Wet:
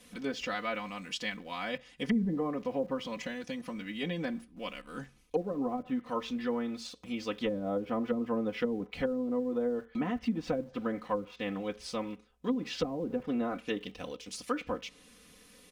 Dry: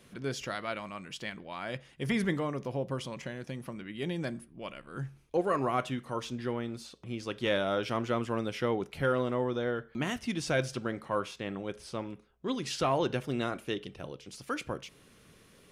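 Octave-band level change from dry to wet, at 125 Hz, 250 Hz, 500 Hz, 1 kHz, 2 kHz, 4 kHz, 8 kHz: -6.5 dB, +2.0 dB, -1.5 dB, -3.5 dB, -3.0 dB, -1.5 dB, -4.0 dB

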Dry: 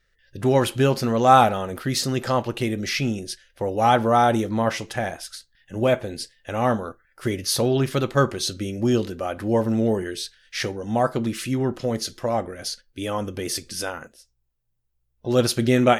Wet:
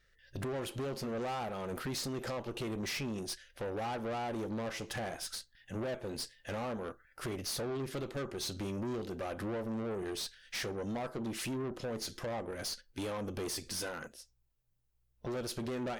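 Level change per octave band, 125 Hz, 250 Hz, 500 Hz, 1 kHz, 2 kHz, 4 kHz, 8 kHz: -16.5 dB, -15.0 dB, -15.5 dB, -20.0 dB, -13.5 dB, -12.0 dB, -11.0 dB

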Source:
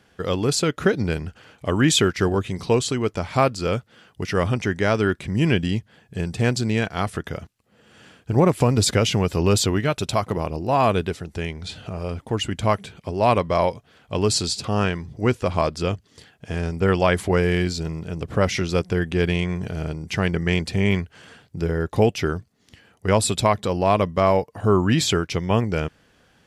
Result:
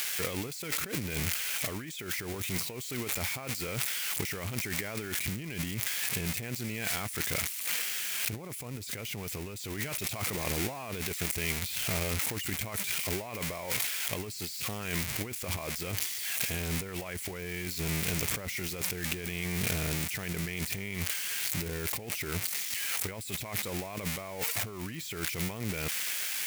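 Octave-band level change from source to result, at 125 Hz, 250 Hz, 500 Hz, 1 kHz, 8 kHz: -14.5 dB, -15.5 dB, -18.5 dB, -18.0 dB, -2.5 dB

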